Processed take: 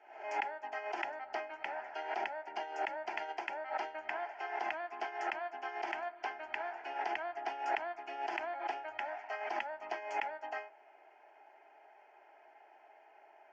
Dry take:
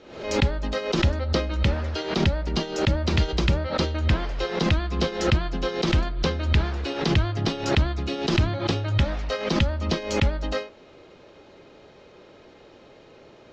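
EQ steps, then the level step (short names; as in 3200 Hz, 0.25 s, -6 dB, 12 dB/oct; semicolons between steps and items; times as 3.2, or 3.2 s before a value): ladder band-pass 860 Hz, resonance 50%; tilt +4 dB/oct; fixed phaser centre 780 Hz, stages 8; +6.5 dB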